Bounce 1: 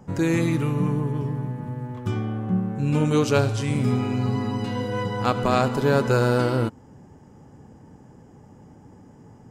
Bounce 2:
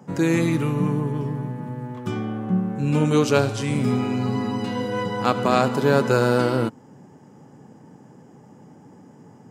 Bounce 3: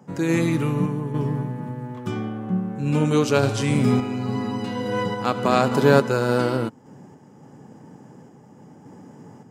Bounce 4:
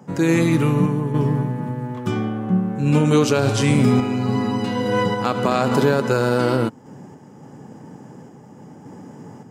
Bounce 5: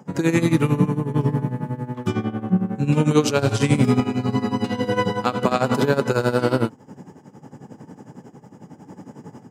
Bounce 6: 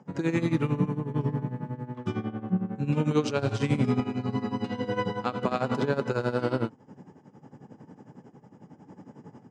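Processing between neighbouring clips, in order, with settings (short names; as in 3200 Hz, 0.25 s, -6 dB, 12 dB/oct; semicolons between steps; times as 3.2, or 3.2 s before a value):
HPF 130 Hz 24 dB/oct; gain +2 dB
random-step tremolo; gain +3.5 dB
limiter -12 dBFS, peak gain reduction 11 dB; gain +5 dB
tremolo 11 Hz, depth 81%; gain +2 dB
air absorption 92 m; gain -7.5 dB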